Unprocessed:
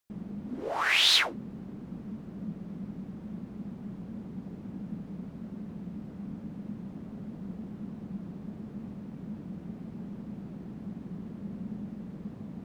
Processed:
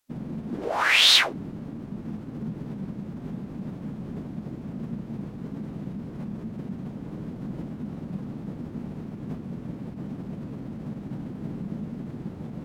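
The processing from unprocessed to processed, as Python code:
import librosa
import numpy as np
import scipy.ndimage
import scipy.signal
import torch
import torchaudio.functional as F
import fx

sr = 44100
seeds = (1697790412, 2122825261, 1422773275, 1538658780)

y = fx.pitch_keep_formants(x, sr, semitones=-5.0)
y = F.gain(torch.from_numpy(y), 6.5).numpy()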